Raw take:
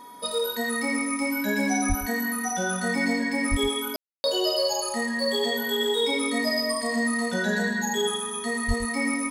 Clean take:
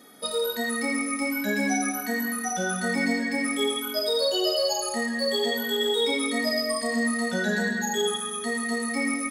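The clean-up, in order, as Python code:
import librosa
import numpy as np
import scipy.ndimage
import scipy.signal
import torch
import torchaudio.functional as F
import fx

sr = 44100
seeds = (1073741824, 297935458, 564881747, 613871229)

y = fx.notch(x, sr, hz=970.0, q=30.0)
y = fx.fix_deplosive(y, sr, at_s=(1.88, 3.5, 8.67))
y = fx.fix_ambience(y, sr, seeds[0], print_start_s=0.0, print_end_s=0.5, start_s=3.96, end_s=4.24)
y = fx.fix_echo_inverse(y, sr, delay_ms=115, level_db=-12.5)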